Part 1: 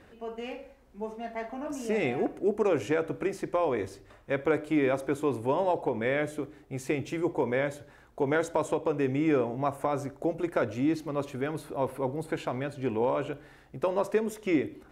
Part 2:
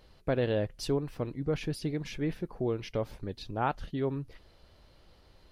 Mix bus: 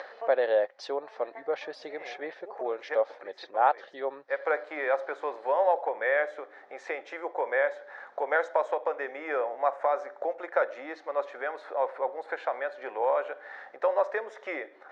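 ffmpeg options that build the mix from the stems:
ffmpeg -i stem1.wav -i stem2.wav -filter_complex "[0:a]equalizer=frequency=1600:width_type=o:width=0.98:gain=5.5,aeval=exprs='val(0)+0.00398*(sin(2*PI*50*n/s)+sin(2*PI*2*50*n/s)/2+sin(2*PI*3*50*n/s)/3+sin(2*PI*4*50*n/s)/4+sin(2*PI*5*50*n/s)/5)':channel_layout=same,volume=-3.5dB[link_01];[1:a]lowshelf=frequency=120:gain=9.5,volume=1.5dB,asplit=2[link_02][link_03];[link_03]apad=whole_len=657670[link_04];[link_01][link_04]sidechaincompress=threshold=-42dB:ratio=12:attack=5.6:release=129[link_05];[link_05][link_02]amix=inputs=2:normalize=0,acompressor=mode=upward:threshold=-31dB:ratio=2.5,highpass=frequency=490:width=0.5412,highpass=frequency=490:width=1.3066,equalizer=frequency=560:width_type=q:width=4:gain=8,equalizer=frequency=790:width_type=q:width=4:gain=8,equalizer=frequency=1200:width_type=q:width=4:gain=3,equalizer=frequency=1800:width_type=q:width=4:gain=6,equalizer=frequency=2800:width_type=q:width=4:gain=-8,equalizer=frequency=4700:width_type=q:width=4:gain=-4,lowpass=frequency=4900:width=0.5412,lowpass=frequency=4900:width=1.3066" out.wav

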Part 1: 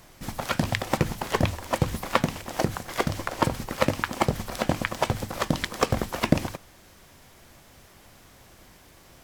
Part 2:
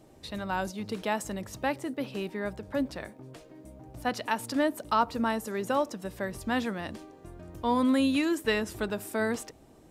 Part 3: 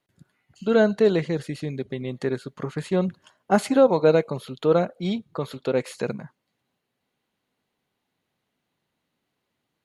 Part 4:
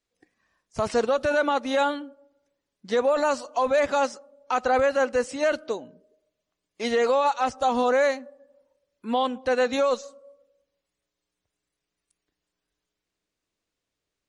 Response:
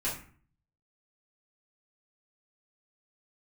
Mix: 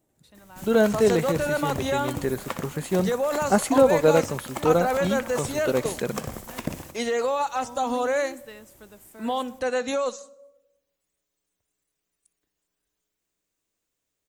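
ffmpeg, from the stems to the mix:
-filter_complex "[0:a]adelay=350,volume=-10dB,asplit=2[link_01][link_02];[link_02]volume=-9.5dB[link_03];[1:a]volume=-17dB[link_04];[2:a]agate=range=-8dB:threshold=-41dB:ratio=16:detection=peak,volume=-1dB[link_05];[3:a]bandreject=frequency=68.94:width_type=h:width=4,bandreject=frequency=137.88:width_type=h:width=4,bandreject=frequency=206.82:width_type=h:width=4,alimiter=limit=-16.5dB:level=0:latency=1:release=147,adelay=150,volume=-1dB,asplit=2[link_06][link_07];[link_07]volume=-21.5dB[link_08];[link_03][link_08]amix=inputs=2:normalize=0,aecho=0:1:62|124|186|248|310|372:1|0.45|0.202|0.0911|0.041|0.0185[link_09];[link_01][link_04][link_05][link_06][link_09]amix=inputs=5:normalize=0,aexciter=amount=3.2:drive=3.3:freq=6600"

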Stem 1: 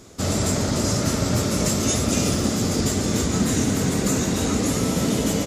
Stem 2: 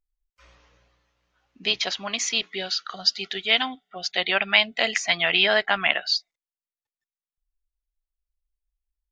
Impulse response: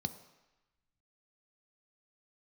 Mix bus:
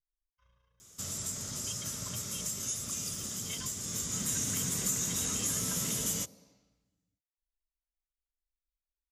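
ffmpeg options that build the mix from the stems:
-filter_complex "[0:a]crystalizer=i=7:c=0,adelay=800,volume=-9dB,afade=type=in:start_time=3.83:duration=0.69:silence=0.281838,asplit=2[link_01][link_02];[link_02]volume=-12dB[link_03];[1:a]lowpass=4700,aecho=1:1:1.9:0.99,tremolo=f=28:d=0.571,volume=-18dB,asplit=2[link_04][link_05];[link_05]volume=-5dB[link_06];[2:a]atrim=start_sample=2205[link_07];[link_03][link_06]amix=inputs=2:normalize=0[link_08];[link_08][link_07]afir=irnorm=-1:irlink=0[link_09];[link_01][link_04][link_09]amix=inputs=3:normalize=0,acompressor=threshold=-38dB:ratio=2"

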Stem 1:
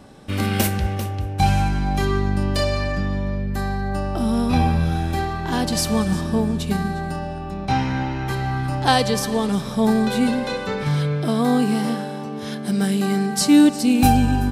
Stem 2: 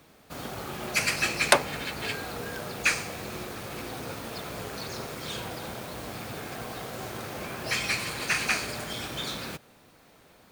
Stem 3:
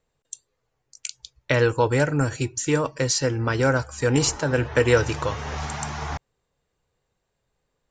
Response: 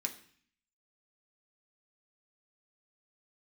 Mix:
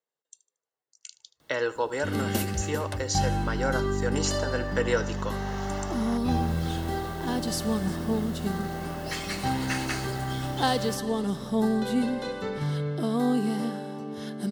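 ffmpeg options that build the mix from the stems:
-filter_complex "[0:a]equalizer=frequency=340:width_type=o:width=1.1:gain=5,adelay=1750,volume=-9dB[link_01];[1:a]adelay=1400,volume=-4.5dB[link_02];[2:a]highpass=340,volume=-6.5dB,afade=type=in:start_time=0.92:duration=0.51:silence=0.421697,asplit=3[link_03][link_04][link_05];[link_04]volume=-17.5dB[link_06];[link_05]apad=whole_len=525643[link_07];[link_02][link_07]sidechaincompress=threshold=-46dB:ratio=6:attack=9.2:release=411[link_08];[link_06]aecho=0:1:76|152|228|304|380:1|0.34|0.116|0.0393|0.0134[link_09];[link_01][link_08][link_03][link_09]amix=inputs=4:normalize=0,asuperstop=centerf=2400:order=4:qfactor=7.8"

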